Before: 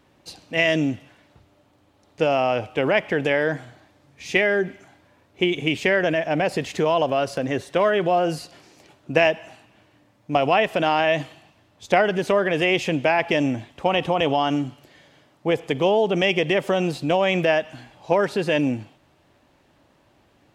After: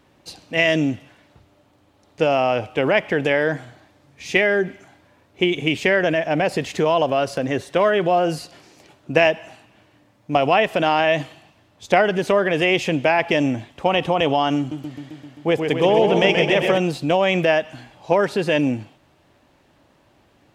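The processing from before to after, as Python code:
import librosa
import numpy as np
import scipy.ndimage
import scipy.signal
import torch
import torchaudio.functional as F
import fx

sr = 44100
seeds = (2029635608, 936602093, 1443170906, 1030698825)

y = fx.echo_warbled(x, sr, ms=131, feedback_pct=72, rate_hz=2.8, cents=114, wet_db=-5.5, at=(14.58, 16.78))
y = y * librosa.db_to_amplitude(2.0)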